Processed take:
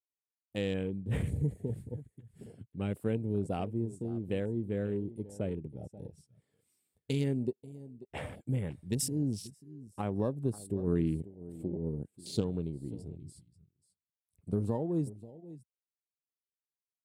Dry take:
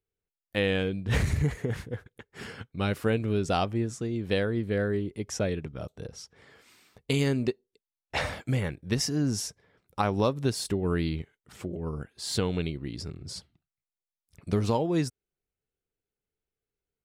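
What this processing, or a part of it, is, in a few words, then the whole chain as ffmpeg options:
budget condenser microphone: -filter_complex "[0:a]asettb=1/sr,asplit=3[a][b][c];[a]atrim=end=10.874[d];[b]atrim=start=10.87:end=12.41,asetpts=PTS-STARTPTS,afade=t=in:d=0.004:c=qsin,afade=t=out:st=1.536:d=0.004:c=qsin,equalizer=f=290:t=o:w=2.6:g=5[e];[c]atrim=start=12.406[f];[d][e]acrossfade=d=0.004:c1=hsin:c2=qsin[g];[g][f]acrossfade=d=0.004:c1=qsin:c2=hsin,aecho=1:1:537:0.15,afwtdn=0.0141,highpass=93,equalizer=f=1.4k:t=o:w=2.2:g=-12.5,highshelf=f=7.2k:t=q:w=3:g=6,volume=-3dB"

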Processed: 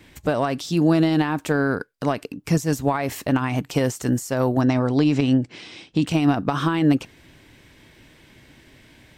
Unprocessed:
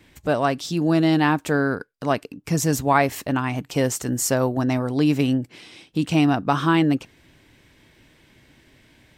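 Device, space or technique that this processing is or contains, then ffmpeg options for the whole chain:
de-esser from a sidechain: -filter_complex "[0:a]asplit=2[a][b];[b]highpass=f=4.7k:p=1,apad=whole_len=404789[c];[a][c]sidechaincompress=threshold=-36dB:ratio=12:attack=4.7:release=73,asettb=1/sr,asplit=3[d][e][f];[d]atrim=end=4.614[g];[e]atrim=start=4.61:end=6.07,asetpts=PTS-STARTPTS,afade=t=in:d=0.004:c=qsin,afade=t=out:st=1.456:d=0.004:c=qsin,lowpass=f=7.5k:w=0.5412,lowpass=f=7.5k:w=1.3066[h];[f]atrim=start=6.066[i];[g][h]acrossfade=d=0.004:c1=hsin:c2=qsin[j];[j][i]acrossfade=d=0.004:c1=qsin:c2=hsin,volume=4dB"

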